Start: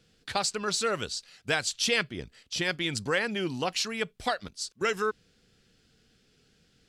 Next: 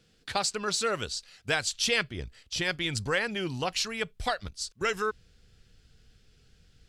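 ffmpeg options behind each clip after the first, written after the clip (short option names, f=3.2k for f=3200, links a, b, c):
-af "asubboost=boost=6:cutoff=94"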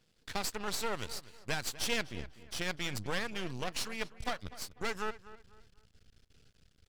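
-filter_complex "[0:a]areverse,acompressor=mode=upward:threshold=-51dB:ratio=2.5,areverse,aeval=exprs='max(val(0),0)':c=same,asplit=2[a][b];[b]adelay=248,lowpass=f=3k:p=1,volume=-16dB,asplit=2[c][d];[d]adelay=248,lowpass=f=3k:p=1,volume=0.34,asplit=2[e][f];[f]adelay=248,lowpass=f=3k:p=1,volume=0.34[g];[a][c][e][g]amix=inputs=4:normalize=0,volume=-3dB"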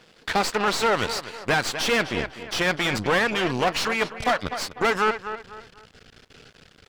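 -filter_complex "[0:a]asplit=2[a][b];[b]highpass=f=720:p=1,volume=26dB,asoftclip=type=tanh:threshold=-15.5dB[c];[a][c]amix=inputs=2:normalize=0,lowpass=f=1.5k:p=1,volume=-6dB,volume=6.5dB"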